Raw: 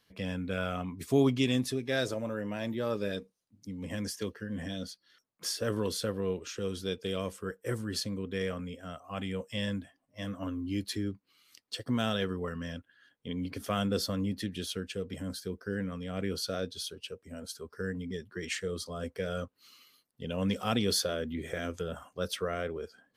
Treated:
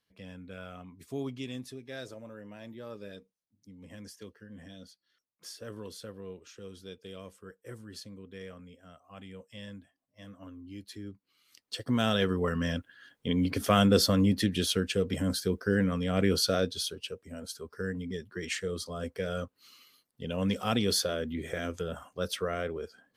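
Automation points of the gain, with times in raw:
10.84 s -11 dB
11.78 s +1 dB
12.64 s +8 dB
16.41 s +8 dB
17.34 s +1 dB

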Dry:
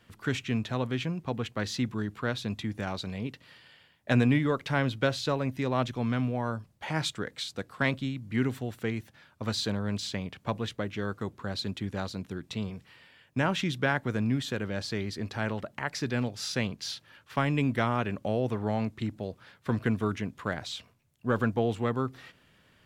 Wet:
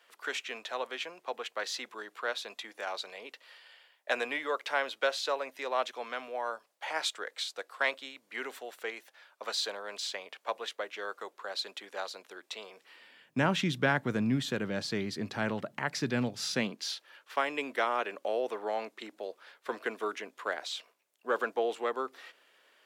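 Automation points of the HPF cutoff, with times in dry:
HPF 24 dB/oct
12.71 s 490 Hz
13.43 s 130 Hz
16.52 s 130 Hz
16.93 s 400 Hz

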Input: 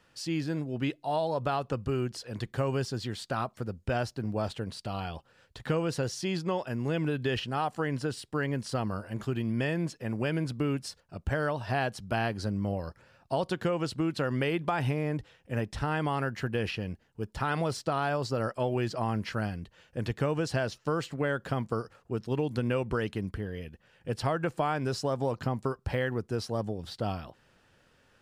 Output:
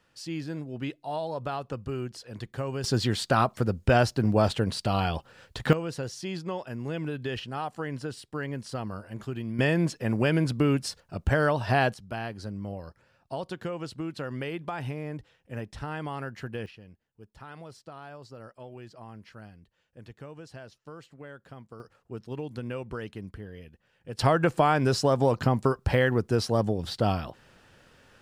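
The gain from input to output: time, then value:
-3 dB
from 2.84 s +9 dB
from 5.73 s -3 dB
from 9.59 s +6 dB
from 11.94 s -5 dB
from 16.66 s -15 dB
from 21.8 s -6 dB
from 24.19 s +7 dB

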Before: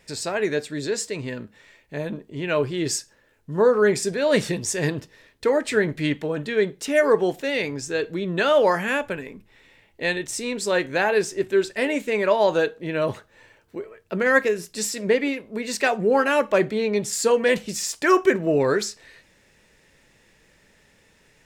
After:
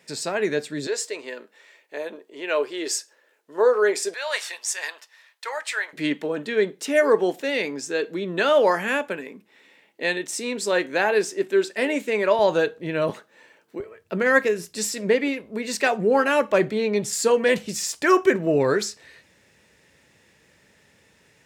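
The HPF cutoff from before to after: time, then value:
HPF 24 dB/oct
140 Hz
from 0.87 s 370 Hz
from 4.14 s 810 Hz
from 5.93 s 200 Hz
from 12.39 s 63 Hz
from 13.1 s 180 Hz
from 13.8 s 65 Hz

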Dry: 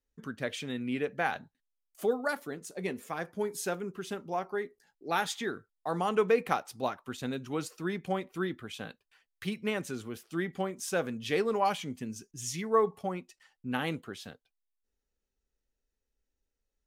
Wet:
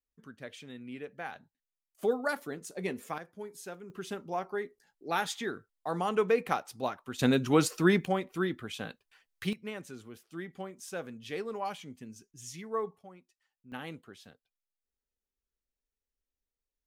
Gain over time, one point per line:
-10 dB
from 2.03 s 0 dB
from 3.18 s -10 dB
from 3.9 s -1 dB
from 7.19 s +10 dB
from 8.05 s +2 dB
from 9.53 s -8 dB
from 12.97 s -17 dB
from 13.72 s -9 dB

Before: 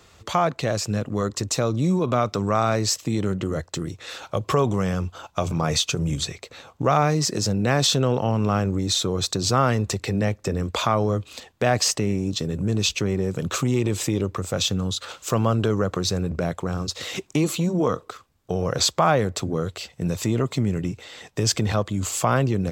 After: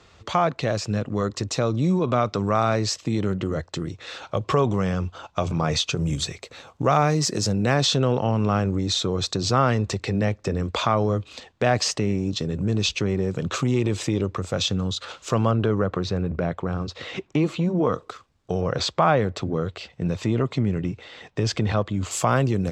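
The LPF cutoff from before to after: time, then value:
5400 Hz
from 5.99 s 10000 Hz
from 7.74 s 5700 Hz
from 15.51 s 2900 Hz
from 17.93 s 6800 Hz
from 18.61 s 3800 Hz
from 22.11 s 10000 Hz

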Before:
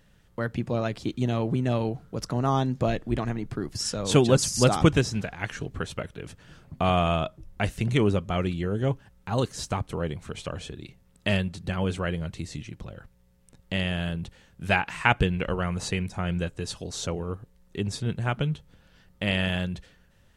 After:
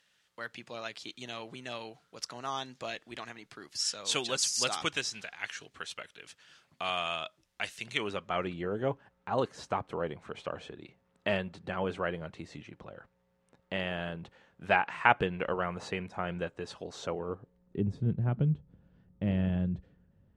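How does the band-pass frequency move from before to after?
band-pass, Q 0.64
7.85 s 4100 Hz
8.54 s 860 Hz
17.17 s 860 Hz
17.93 s 160 Hz

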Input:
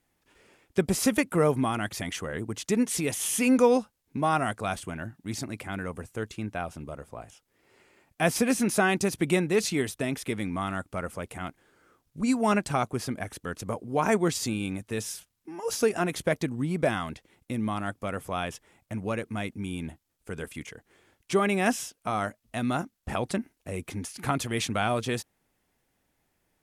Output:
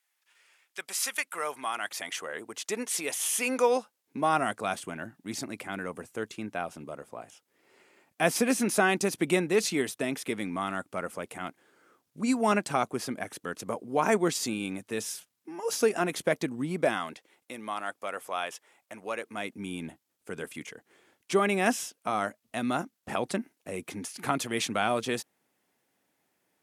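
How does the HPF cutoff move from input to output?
1.17 s 1400 Hz
2.18 s 510 Hz
3.68 s 510 Hz
4.35 s 210 Hz
16.73 s 210 Hz
17.52 s 520 Hz
19.15 s 520 Hz
19.66 s 200 Hz

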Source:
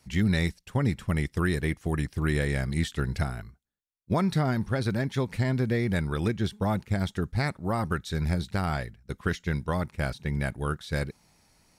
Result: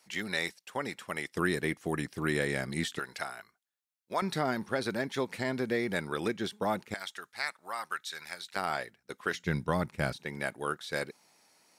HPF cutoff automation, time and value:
510 Hz
from 1.35 s 240 Hz
from 2.99 s 690 Hz
from 4.22 s 310 Hz
from 6.94 s 1200 Hz
from 8.56 s 420 Hz
from 9.34 s 140 Hz
from 10.16 s 350 Hz

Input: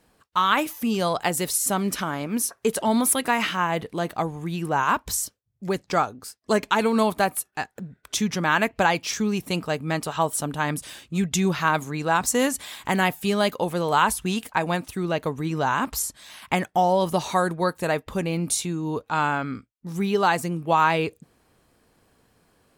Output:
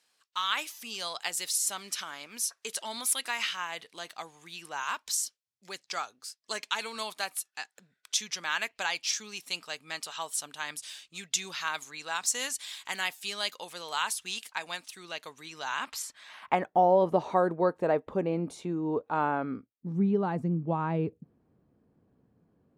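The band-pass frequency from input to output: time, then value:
band-pass, Q 0.91
15.6 s 4900 Hz
16.2 s 1800 Hz
16.76 s 470 Hz
19.49 s 470 Hz
20.05 s 180 Hz

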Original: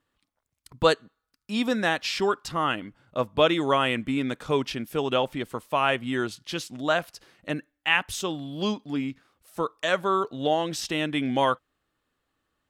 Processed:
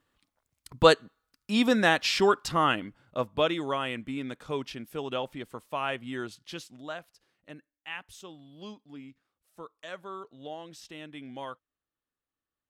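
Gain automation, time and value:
2.57 s +2 dB
3.75 s -8 dB
6.54 s -8 dB
7.04 s -16.5 dB

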